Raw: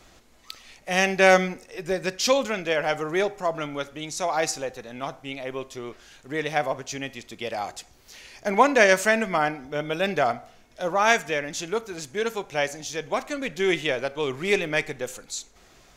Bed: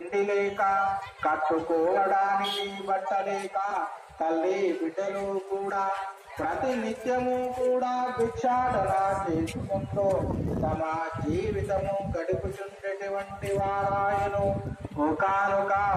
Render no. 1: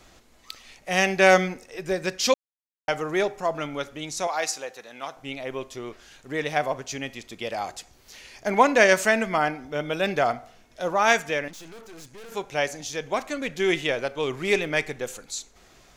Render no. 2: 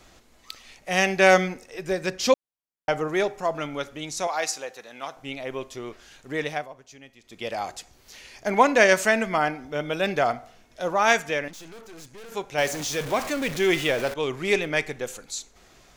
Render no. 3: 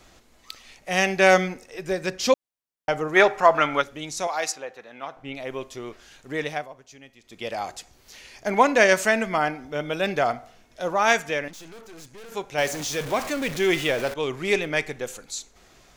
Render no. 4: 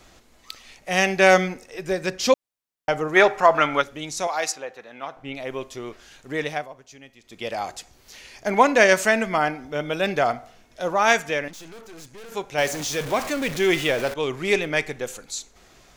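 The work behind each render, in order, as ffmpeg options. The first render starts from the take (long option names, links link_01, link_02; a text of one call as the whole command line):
ffmpeg -i in.wav -filter_complex "[0:a]asettb=1/sr,asplit=3[link_01][link_02][link_03];[link_01]atrim=end=4.274[link_04];[link_02]atrim=start=4.27:end=5.17,asetpts=PTS-STARTPTS,afade=type=in:duration=0.004:curve=qsin,afade=type=out:start_time=0.896:duration=0.004:curve=qsin,highpass=frequency=730:poles=1[link_05];[link_03]atrim=start=5.166[link_06];[link_04][link_05]acrossfade=duration=0.004:curve1=hsin:curve2=qsin[link_07];[link_07][link_06]acrossfade=duration=0.004:curve1=qsin:curve2=hsin,asettb=1/sr,asplit=3[link_08][link_09][link_10];[link_08]atrim=end=11.484[link_11];[link_09]atrim=start=11.48:end=12.32,asetpts=PTS-STARTPTS,afade=type=in:duration=0.004:curve=qsin,afade=type=out:start_time=0.836:duration=0.004:curve=qsin,aeval=exprs='(tanh(126*val(0)+0.65)-tanh(0.65))/126':channel_layout=same[link_12];[link_10]atrim=start=12.316[link_13];[link_11][link_12]acrossfade=duration=0.004:curve1=hsin:curve2=qsin[link_14];[link_14][link_13]acrossfade=duration=0.004:curve1=qsin:curve2=hsin,asplit=3[link_15][link_16][link_17];[link_15]atrim=end=2.34,asetpts=PTS-STARTPTS,afade=type=out:start_time=2.336:duration=0.004:curve=hsin[link_18];[link_16]atrim=start=2.34:end=2.88,asetpts=PTS-STARTPTS,volume=0[link_19];[link_17]atrim=start=2.88,asetpts=PTS-STARTPTS,afade=type=in:duration=0.004:curve=hsin[link_20];[link_18][link_19][link_20]concat=n=3:v=0:a=1" out.wav
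ffmpeg -i in.wav -filter_complex "[0:a]asettb=1/sr,asplit=3[link_01][link_02][link_03];[link_01]atrim=end=2.094[link_04];[link_02]atrim=start=2.09:end=3.08,asetpts=PTS-STARTPTS,afade=type=in:duration=0.004:curve=qsin,afade=type=out:start_time=0.986:duration=0.004:curve=qsin,tiltshelf=frequency=1300:gain=3.5[link_05];[link_03]atrim=start=3.076[link_06];[link_04][link_05]acrossfade=duration=0.004:curve1=hsin:curve2=qsin[link_07];[link_07][link_06]acrossfade=duration=0.004:curve1=qsin:curve2=hsin,asettb=1/sr,asplit=3[link_08][link_09][link_10];[link_08]atrim=end=12.584[link_11];[link_09]atrim=start=12.58:end=14.14,asetpts=PTS-STARTPTS,afade=type=in:duration=0.004:curve=qsin,afade=type=out:start_time=1.556:duration=0.004:curve=qsin,aeval=exprs='val(0)+0.5*0.0335*sgn(val(0))':channel_layout=same[link_12];[link_10]atrim=start=14.136[link_13];[link_11][link_12]acrossfade=duration=0.004:curve1=hsin:curve2=qsin[link_14];[link_14][link_13]acrossfade=duration=0.004:curve1=qsin:curve2=hsin,asplit=3[link_15][link_16][link_17];[link_15]atrim=end=6.68,asetpts=PTS-STARTPTS,afade=type=out:start_time=6.44:duration=0.24:silence=0.177828[link_18];[link_16]atrim=start=6.68:end=7.22,asetpts=PTS-STARTPTS,volume=-15dB[link_19];[link_17]atrim=start=7.22,asetpts=PTS-STARTPTS,afade=type=in:duration=0.24:silence=0.177828[link_20];[link_18][link_19][link_20]concat=n=3:v=0:a=1" out.wav
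ffmpeg -i in.wav -filter_complex "[0:a]asplit=3[link_01][link_02][link_03];[link_01]afade=type=out:start_time=3.15:duration=0.02[link_04];[link_02]equalizer=frequency=1400:width_type=o:width=2.7:gain=14,afade=type=in:start_time=3.15:duration=0.02,afade=type=out:start_time=3.8:duration=0.02[link_05];[link_03]afade=type=in:start_time=3.8:duration=0.02[link_06];[link_04][link_05][link_06]amix=inputs=3:normalize=0,asettb=1/sr,asplit=3[link_07][link_08][link_09];[link_07]atrim=end=4.524[link_10];[link_08]atrim=start=4.52:end=5.35,asetpts=PTS-STARTPTS,afade=type=in:duration=0.004:curve=qsin,afade=type=out:start_time=0.826:duration=0.004:curve=qsin,bass=frequency=250:gain=1,treble=frequency=4000:gain=-14[link_11];[link_09]atrim=start=5.346[link_12];[link_10][link_11]acrossfade=duration=0.004:curve1=hsin:curve2=qsin[link_13];[link_13][link_12]acrossfade=duration=0.004:curve1=qsin:curve2=hsin" out.wav
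ffmpeg -i in.wav -af "volume=1.5dB,alimiter=limit=-3dB:level=0:latency=1" out.wav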